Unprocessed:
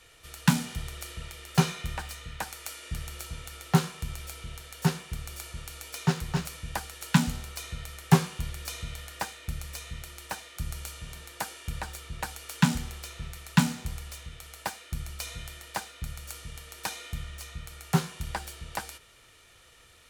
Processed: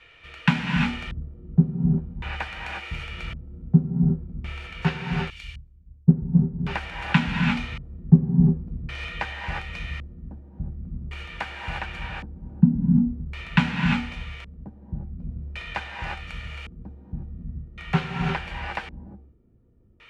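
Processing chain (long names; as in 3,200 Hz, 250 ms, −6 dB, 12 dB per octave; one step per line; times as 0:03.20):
reverb whose tail is shaped and stops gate 380 ms rising, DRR 0 dB
auto-filter low-pass square 0.45 Hz 240–2,500 Hz
0:05.30–0:06.59: multiband upward and downward expander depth 100%
level +1 dB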